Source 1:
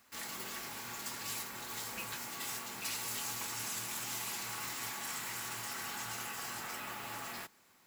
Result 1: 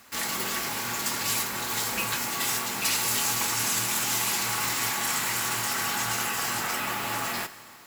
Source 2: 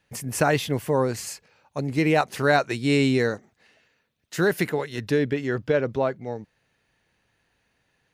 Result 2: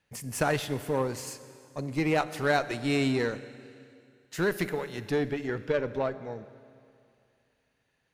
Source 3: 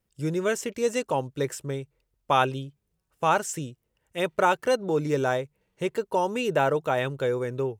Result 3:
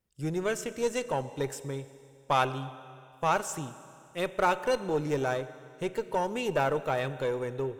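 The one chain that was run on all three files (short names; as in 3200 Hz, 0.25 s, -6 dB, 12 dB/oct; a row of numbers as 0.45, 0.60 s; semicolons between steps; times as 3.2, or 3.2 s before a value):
Schroeder reverb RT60 2.4 s, combs from 30 ms, DRR 13.5 dB; added harmonics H 8 -26 dB, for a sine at -6 dBFS; normalise peaks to -12 dBFS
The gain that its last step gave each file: +13.0, -6.0, -4.0 dB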